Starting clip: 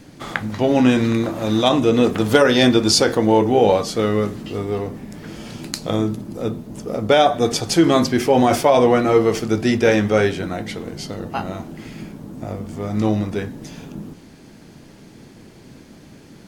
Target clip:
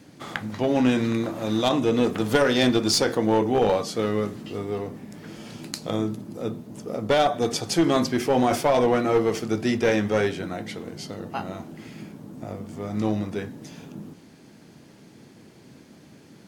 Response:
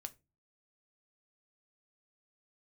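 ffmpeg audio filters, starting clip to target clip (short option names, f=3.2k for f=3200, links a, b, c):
-af "highpass=96,aeval=exprs='clip(val(0),-1,0.282)':c=same,volume=-5.5dB"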